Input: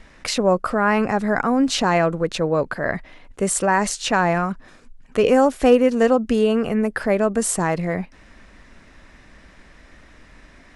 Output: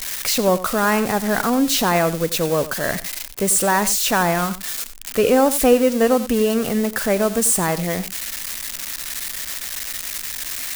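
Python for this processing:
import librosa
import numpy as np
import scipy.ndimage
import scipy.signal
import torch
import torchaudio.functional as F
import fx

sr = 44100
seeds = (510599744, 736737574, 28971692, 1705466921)

p1 = x + 0.5 * 10.0 ** (-15.5 / 20.0) * np.diff(np.sign(x), prepend=np.sign(x[:1]))
y = p1 + fx.echo_single(p1, sr, ms=91, db=-15.0, dry=0)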